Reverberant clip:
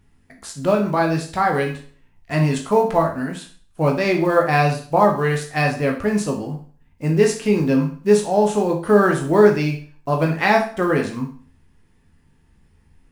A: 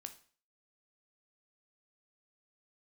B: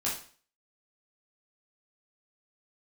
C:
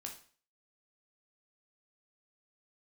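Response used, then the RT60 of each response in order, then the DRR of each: C; 0.45, 0.45, 0.45 s; 7.0, -7.0, 1.0 dB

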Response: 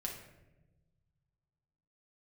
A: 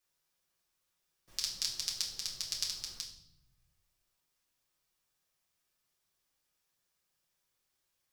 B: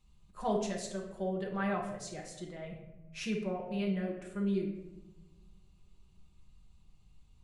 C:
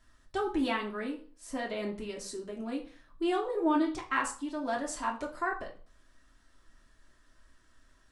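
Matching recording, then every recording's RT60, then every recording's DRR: B; 0.70, 1.1, 0.45 s; -3.0, -1.5, -1.5 dB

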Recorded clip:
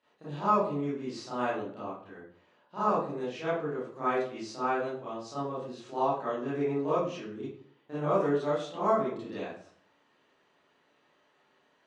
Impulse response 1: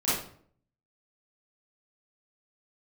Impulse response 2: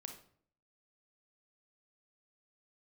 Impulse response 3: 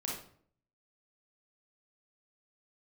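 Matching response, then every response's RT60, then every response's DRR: 1; 0.55, 0.55, 0.55 s; -12.0, 4.5, -3.5 dB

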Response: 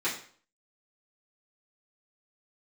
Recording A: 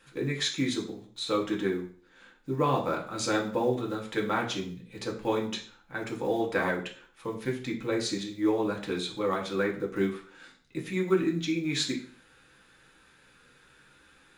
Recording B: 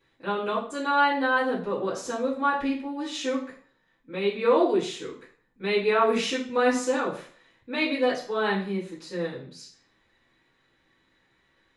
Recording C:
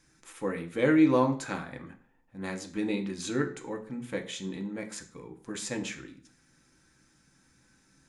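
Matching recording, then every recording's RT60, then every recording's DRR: B; 0.50, 0.50, 0.50 s; -1.5, -10.5, 4.0 dB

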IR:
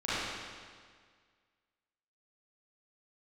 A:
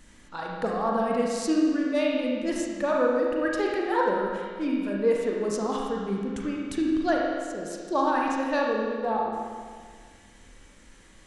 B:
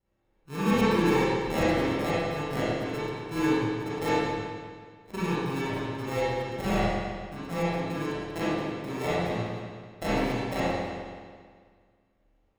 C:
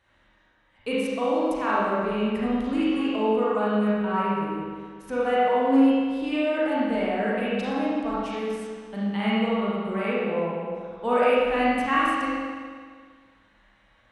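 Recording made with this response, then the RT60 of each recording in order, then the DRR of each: B; 1.8, 1.8, 1.8 s; -2.5, -13.0, -8.5 dB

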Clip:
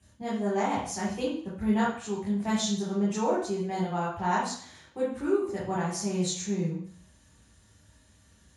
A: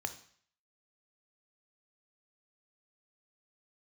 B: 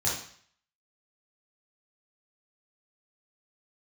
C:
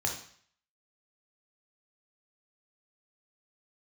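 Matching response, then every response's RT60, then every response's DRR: B; 0.55, 0.55, 0.55 s; 8.0, -7.0, 0.5 dB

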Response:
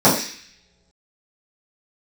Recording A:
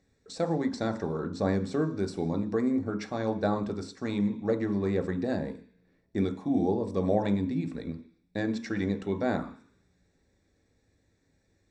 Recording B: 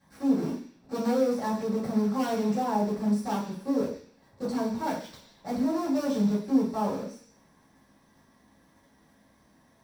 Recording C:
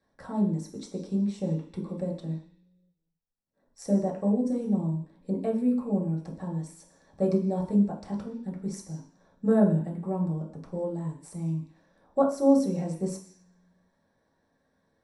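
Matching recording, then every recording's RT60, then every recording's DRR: B; not exponential, not exponential, not exponential; 6.0, -11.5, -3.0 dB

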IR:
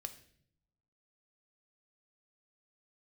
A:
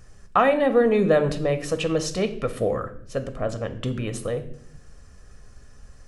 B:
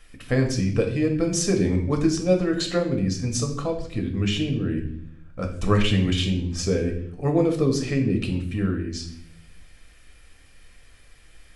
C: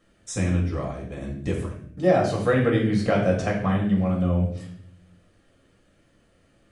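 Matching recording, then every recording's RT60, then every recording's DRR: A; 0.65, 0.60, 0.60 s; 8.0, 2.5, -2.5 dB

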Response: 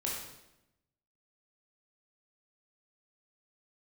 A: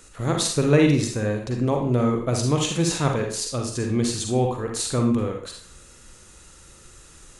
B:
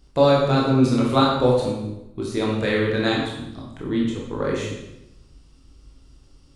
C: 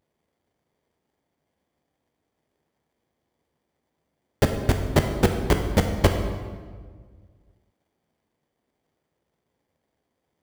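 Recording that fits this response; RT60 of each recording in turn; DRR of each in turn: B; 0.50, 0.90, 1.6 s; 2.0, -4.0, 4.0 dB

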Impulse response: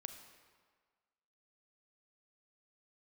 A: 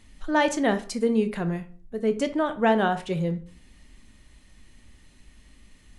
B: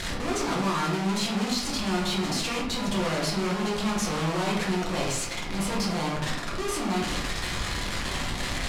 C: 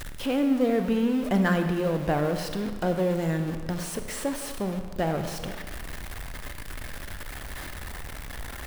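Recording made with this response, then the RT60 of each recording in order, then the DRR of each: C; 0.45, 0.80, 1.6 s; 9.0, -4.5, 7.0 dB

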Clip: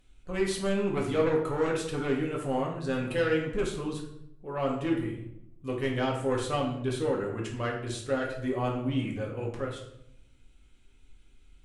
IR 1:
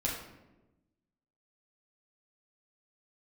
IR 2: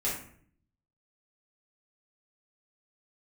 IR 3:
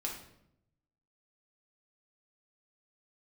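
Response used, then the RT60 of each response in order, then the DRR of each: 3; 1.1, 0.55, 0.75 s; -5.5, -8.5, -2.0 dB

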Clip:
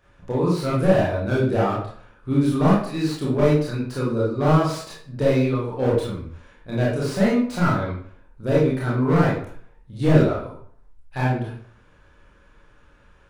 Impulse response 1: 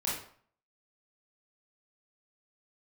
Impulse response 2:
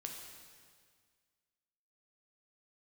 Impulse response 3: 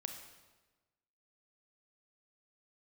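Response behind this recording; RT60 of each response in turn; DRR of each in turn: 1; 0.50, 1.8, 1.2 s; -6.5, 1.0, 4.5 dB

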